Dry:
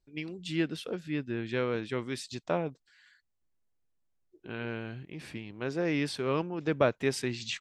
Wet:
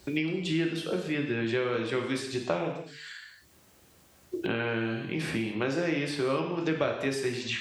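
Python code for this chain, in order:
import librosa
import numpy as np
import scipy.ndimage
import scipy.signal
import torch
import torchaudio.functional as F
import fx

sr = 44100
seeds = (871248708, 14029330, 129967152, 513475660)

y = scipy.signal.sosfilt(scipy.signal.butter(2, 70.0, 'highpass', fs=sr, output='sos'), x)
y = fx.hum_notches(y, sr, base_hz=50, count=9)
y = fx.rev_gated(y, sr, seeds[0], gate_ms=260, shape='falling', drr_db=1.0)
y = fx.band_squash(y, sr, depth_pct=100)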